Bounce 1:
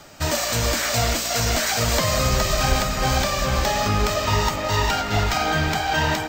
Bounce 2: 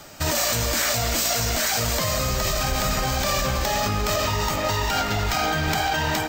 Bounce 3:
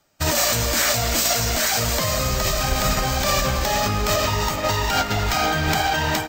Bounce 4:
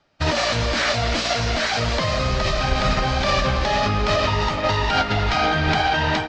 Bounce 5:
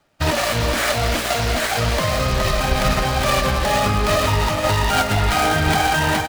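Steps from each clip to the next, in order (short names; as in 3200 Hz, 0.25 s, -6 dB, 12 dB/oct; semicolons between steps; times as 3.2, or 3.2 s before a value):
high shelf 9600 Hz +7.5 dB; in parallel at +1.5 dB: negative-ratio compressor -23 dBFS, ratio -0.5; on the sum: gain -7.5 dB
upward expander 2.5:1, over -39 dBFS; gain +4.5 dB
LPF 4600 Hz 24 dB/oct; gain +1.5 dB
switching dead time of 0.094 ms; echo 0.397 s -10 dB; gain +2 dB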